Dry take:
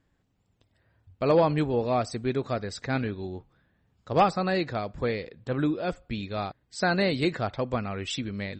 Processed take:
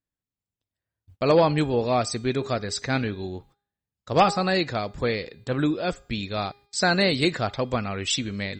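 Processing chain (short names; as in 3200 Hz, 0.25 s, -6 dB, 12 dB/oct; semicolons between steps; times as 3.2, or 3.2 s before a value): gate -53 dBFS, range -25 dB; high shelf 3500 Hz +10.5 dB; de-hum 406.7 Hz, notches 33; gain +2.5 dB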